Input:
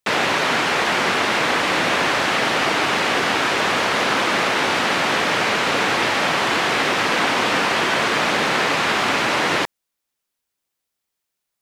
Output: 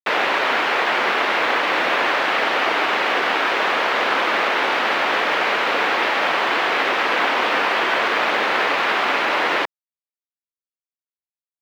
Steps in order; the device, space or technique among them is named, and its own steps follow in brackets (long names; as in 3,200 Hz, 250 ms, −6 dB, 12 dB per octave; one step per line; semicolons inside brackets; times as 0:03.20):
phone line with mismatched companding (band-pass filter 380–3,300 Hz; mu-law and A-law mismatch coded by A)
level +1.5 dB